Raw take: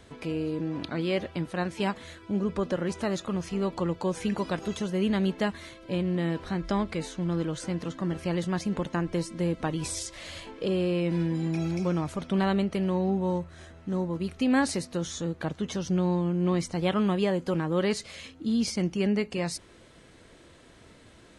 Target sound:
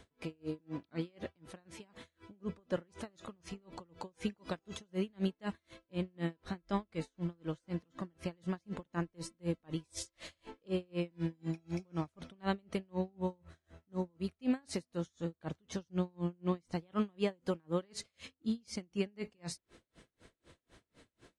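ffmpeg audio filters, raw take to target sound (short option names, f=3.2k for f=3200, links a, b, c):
-af "aeval=exprs='val(0)*pow(10,-38*(0.5-0.5*cos(2*PI*4*n/s))/20)':c=same,volume=-4dB"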